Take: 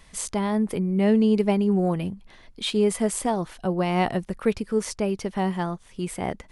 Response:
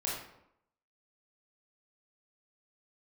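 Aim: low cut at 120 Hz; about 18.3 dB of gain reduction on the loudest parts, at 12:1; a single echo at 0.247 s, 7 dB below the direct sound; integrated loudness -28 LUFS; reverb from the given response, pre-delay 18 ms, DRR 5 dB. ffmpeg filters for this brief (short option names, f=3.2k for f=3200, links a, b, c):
-filter_complex "[0:a]highpass=120,acompressor=threshold=-35dB:ratio=12,aecho=1:1:247:0.447,asplit=2[a][b];[1:a]atrim=start_sample=2205,adelay=18[c];[b][c]afir=irnorm=-1:irlink=0,volume=-9.5dB[d];[a][d]amix=inputs=2:normalize=0,volume=10dB"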